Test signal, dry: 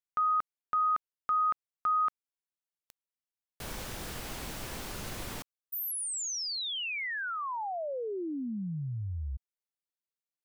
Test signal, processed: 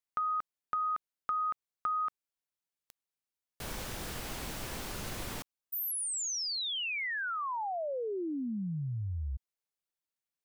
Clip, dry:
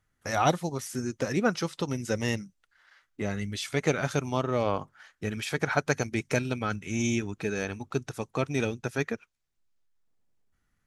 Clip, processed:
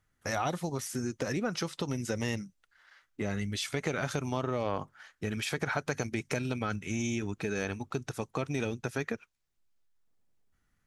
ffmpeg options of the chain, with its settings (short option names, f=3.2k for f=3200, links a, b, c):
-af "acompressor=threshold=-34dB:ratio=4:attack=52:release=35:knee=1:detection=rms"